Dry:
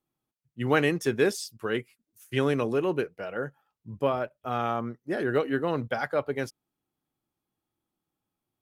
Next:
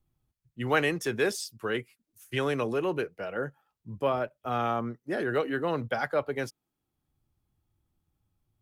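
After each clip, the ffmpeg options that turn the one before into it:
-filter_complex "[0:a]acrossover=split=100|440|4900[a][b][c][d];[a]acompressor=mode=upward:threshold=-57dB:ratio=2.5[e];[b]alimiter=level_in=4.5dB:limit=-24dB:level=0:latency=1,volume=-4.5dB[f];[e][f][c][d]amix=inputs=4:normalize=0"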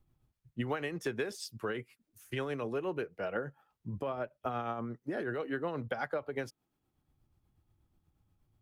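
-af "highshelf=f=3.5k:g=-7,acompressor=threshold=-36dB:ratio=10,tremolo=f=8.3:d=0.42,volume=5.5dB"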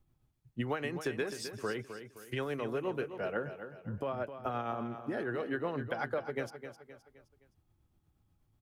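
-af "aecho=1:1:260|520|780|1040:0.316|0.133|0.0558|0.0234"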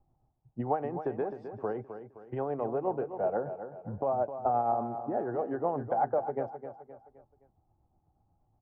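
-af "lowpass=f=780:t=q:w=4.9"

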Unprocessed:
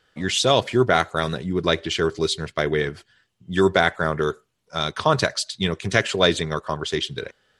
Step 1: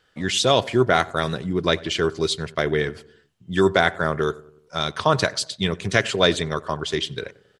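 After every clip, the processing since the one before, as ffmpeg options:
-filter_complex "[0:a]asplit=2[a][b];[b]adelay=93,lowpass=f=1.3k:p=1,volume=-20dB,asplit=2[c][d];[d]adelay=93,lowpass=f=1.3k:p=1,volume=0.55,asplit=2[e][f];[f]adelay=93,lowpass=f=1.3k:p=1,volume=0.55,asplit=2[g][h];[h]adelay=93,lowpass=f=1.3k:p=1,volume=0.55[i];[a][c][e][g][i]amix=inputs=5:normalize=0"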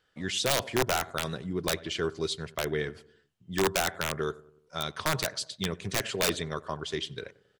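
-af "aeval=exprs='(mod(2.82*val(0)+1,2)-1)/2.82':c=same,volume=-8.5dB"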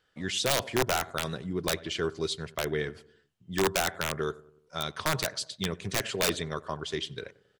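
-af anull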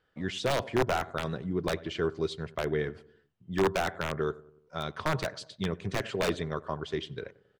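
-af "lowpass=f=1.5k:p=1,volume=1.5dB"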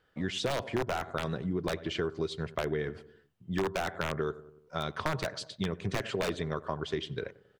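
-af "acompressor=threshold=-31dB:ratio=6,volume=3dB"

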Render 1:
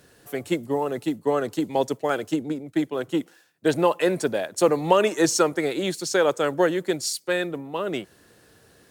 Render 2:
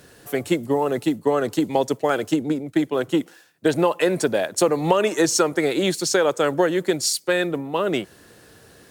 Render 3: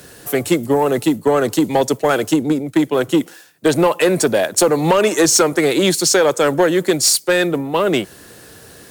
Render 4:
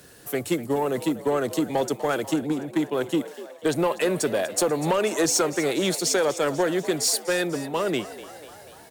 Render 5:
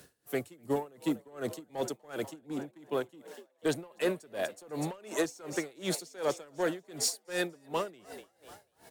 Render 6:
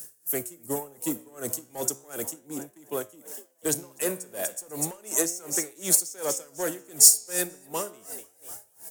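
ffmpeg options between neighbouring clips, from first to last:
-af "acompressor=threshold=-22dB:ratio=3,volume=6dB"
-filter_complex "[0:a]highshelf=f=6.4k:g=6.5,acrossover=split=110[a][b];[b]asoftclip=type=tanh:threshold=-13dB[c];[a][c]amix=inputs=2:normalize=0,volume=7dB"
-filter_complex "[0:a]asplit=7[a][b][c][d][e][f][g];[b]adelay=245,afreqshift=69,volume=-15.5dB[h];[c]adelay=490,afreqshift=138,volume=-19.7dB[i];[d]adelay=735,afreqshift=207,volume=-23.8dB[j];[e]adelay=980,afreqshift=276,volume=-28dB[k];[f]adelay=1225,afreqshift=345,volume=-32.1dB[l];[g]adelay=1470,afreqshift=414,volume=-36.3dB[m];[a][h][i][j][k][l][m]amix=inputs=7:normalize=0,volume=-9dB"
-af "aeval=exprs='val(0)*pow(10,-27*(0.5-0.5*cos(2*PI*2.7*n/s))/20)':c=same,volume=-4.5dB"
-af "aexciter=amount=10.1:drive=3.4:freq=5.7k,flanger=delay=9.3:depth=7.3:regen=85:speed=0.34:shape=sinusoidal,volume=4.5dB"

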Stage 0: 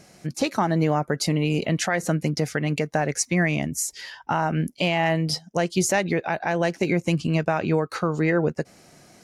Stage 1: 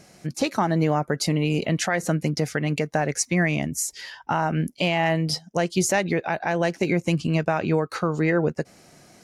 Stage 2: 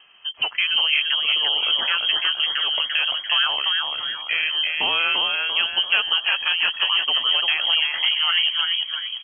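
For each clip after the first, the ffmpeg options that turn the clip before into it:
-af anull
-filter_complex "[0:a]asplit=2[a][b];[b]asplit=6[c][d][e][f][g][h];[c]adelay=342,afreqshift=-100,volume=-3dB[i];[d]adelay=684,afreqshift=-200,volume=-9.2dB[j];[e]adelay=1026,afreqshift=-300,volume=-15.4dB[k];[f]adelay=1368,afreqshift=-400,volume=-21.6dB[l];[g]adelay=1710,afreqshift=-500,volume=-27.8dB[m];[h]adelay=2052,afreqshift=-600,volume=-34dB[n];[i][j][k][l][m][n]amix=inputs=6:normalize=0[o];[a][o]amix=inputs=2:normalize=0,lowpass=f=2.8k:t=q:w=0.5098,lowpass=f=2.8k:t=q:w=0.6013,lowpass=f=2.8k:t=q:w=0.9,lowpass=f=2.8k:t=q:w=2.563,afreqshift=-3300"

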